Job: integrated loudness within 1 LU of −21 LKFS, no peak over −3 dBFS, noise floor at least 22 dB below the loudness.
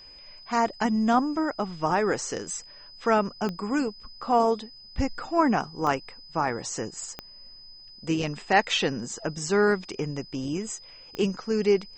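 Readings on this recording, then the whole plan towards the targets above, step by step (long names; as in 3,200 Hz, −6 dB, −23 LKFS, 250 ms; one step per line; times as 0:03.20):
number of clicks 4; interfering tone 5,000 Hz; level of the tone −46 dBFS; integrated loudness −27.0 LKFS; sample peak −7.5 dBFS; target loudness −21.0 LKFS
→ click removal
notch filter 5,000 Hz, Q 30
level +6 dB
brickwall limiter −3 dBFS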